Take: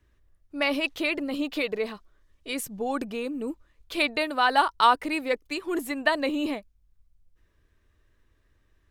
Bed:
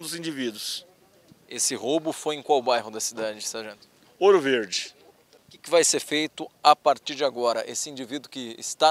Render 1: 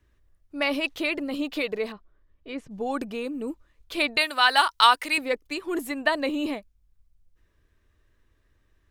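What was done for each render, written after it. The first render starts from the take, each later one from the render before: 1.92–2.71 s: tape spacing loss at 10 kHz 29 dB; 4.17–5.18 s: tilt shelf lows -9.5 dB, about 930 Hz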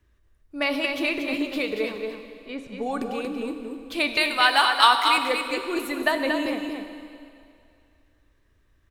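delay 233 ms -5.5 dB; plate-style reverb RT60 2.4 s, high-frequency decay 1×, DRR 7 dB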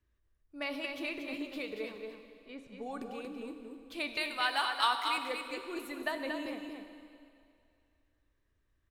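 trim -12.5 dB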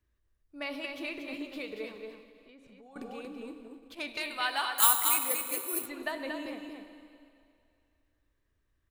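2.23–2.96 s: compression, threshold -52 dBFS; 3.62–4.24 s: transformer saturation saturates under 1.6 kHz; 4.78–5.86 s: careless resampling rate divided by 4×, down none, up zero stuff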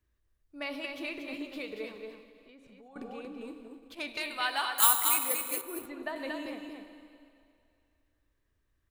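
2.88–3.41 s: treble shelf 4.5 kHz -8 dB; 5.61–6.16 s: treble shelf 2.5 kHz -11 dB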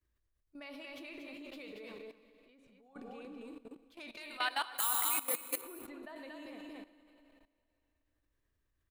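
level held to a coarse grid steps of 16 dB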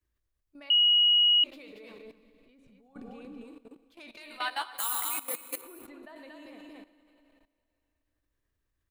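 0.70–1.44 s: bleep 2.9 kHz -18.5 dBFS; 2.05–3.44 s: tone controls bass +10 dB, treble +1 dB; 4.26–5.00 s: doubling 13 ms -5 dB

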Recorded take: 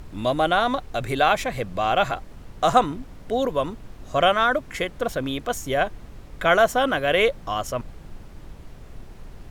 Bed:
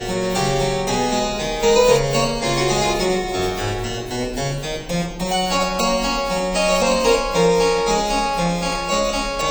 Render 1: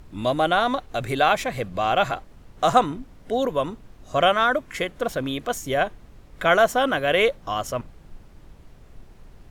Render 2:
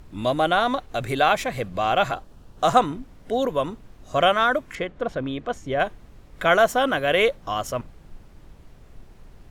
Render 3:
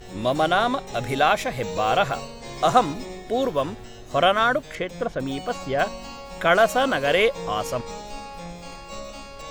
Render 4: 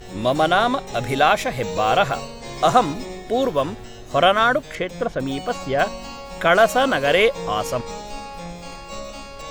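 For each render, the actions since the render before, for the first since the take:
noise print and reduce 6 dB
2.13–2.65 s: peaking EQ 2.1 kHz -10 dB 0.35 oct; 4.75–5.80 s: tape spacing loss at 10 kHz 20 dB
add bed -17.5 dB
trim +3 dB; peak limiter -3 dBFS, peak gain reduction 2 dB

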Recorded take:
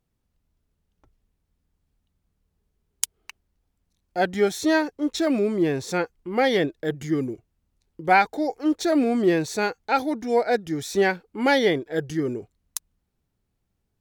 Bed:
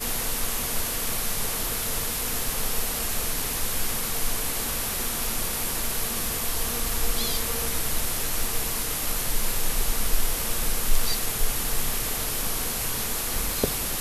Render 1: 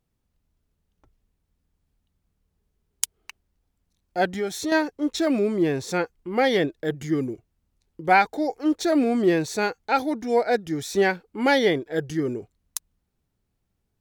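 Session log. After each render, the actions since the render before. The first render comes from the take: 4.26–4.72 s: compression 2:1, threshold -28 dBFS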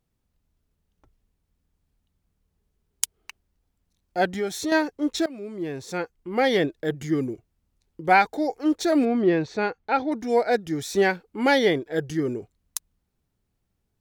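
5.26–6.53 s: fade in, from -20.5 dB; 9.05–10.12 s: distance through air 210 m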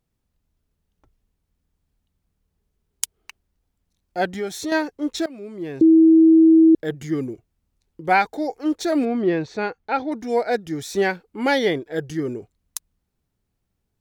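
5.81–6.75 s: bleep 323 Hz -8.5 dBFS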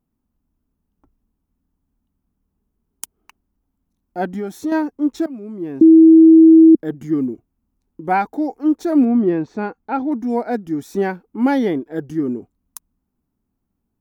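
graphic EQ 125/250/500/1000/2000/4000/8000 Hz -4/+11/-5/+4/-6/-10/-6 dB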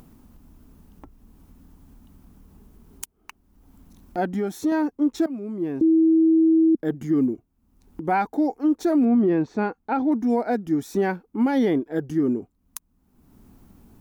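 peak limiter -13.5 dBFS, peak gain reduction 10.5 dB; upward compressor, threshold -31 dBFS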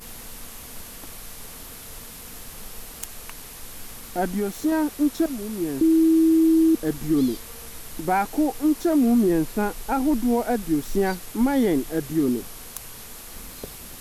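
add bed -12 dB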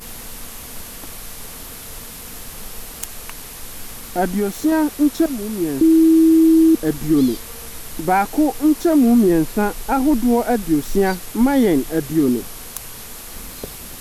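trim +5.5 dB

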